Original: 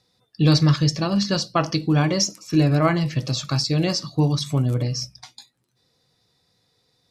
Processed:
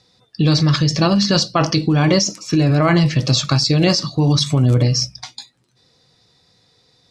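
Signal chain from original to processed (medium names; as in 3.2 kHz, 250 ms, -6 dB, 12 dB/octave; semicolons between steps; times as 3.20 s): treble shelf 5.3 kHz +11 dB; in parallel at +2 dB: compressor with a negative ratio -21 dBFS, ratio -0.5; on the sum: distance through air 93 m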